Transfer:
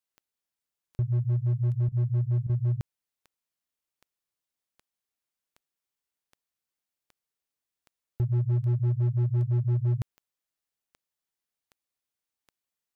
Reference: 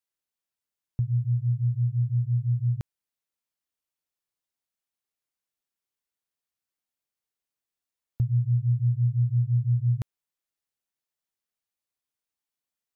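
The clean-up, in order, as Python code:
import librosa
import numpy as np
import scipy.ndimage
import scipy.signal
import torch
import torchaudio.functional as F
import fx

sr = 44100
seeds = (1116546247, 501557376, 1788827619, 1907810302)

y = fx.fix_declip(x, sr, threshold_db=-21.5)
y = fx.fix_declick_ar(y, sr, threshold=10.0)
y = fx.fix_interpolate(y, sr, at_s=(1.89, 2.47), length_ms=24.0)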